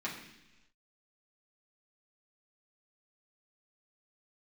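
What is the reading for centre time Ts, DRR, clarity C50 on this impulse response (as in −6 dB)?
35 ms, −6.0 dB, 6.0 dB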